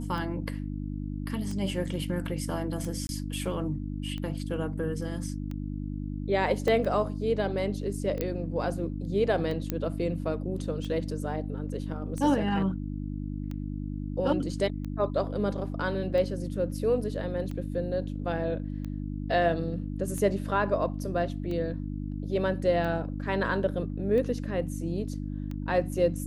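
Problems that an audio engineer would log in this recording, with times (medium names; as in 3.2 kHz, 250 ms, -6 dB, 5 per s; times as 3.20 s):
hum 50 Hz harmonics 6 -34 dBFS
tick 45 rpm
3.07–3.09 s: dropout 21 ms
6.68 s: dropout 2.5 ms
8.21 s: pop -15 dBFS
9.70 s: pop -14 dBFS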